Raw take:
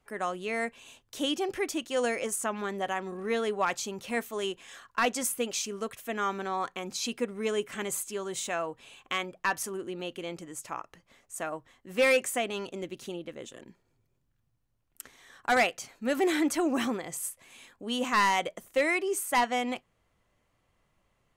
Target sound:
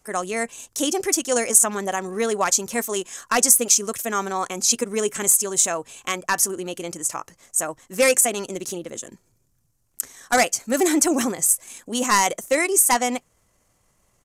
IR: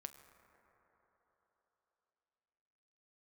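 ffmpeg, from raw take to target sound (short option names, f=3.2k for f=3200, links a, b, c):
-af "aresample=32000,aresample=44100,atempo=1.5,highshelf=f=4.7k:t=q:w=1.5:g=10.5,volume=7dB"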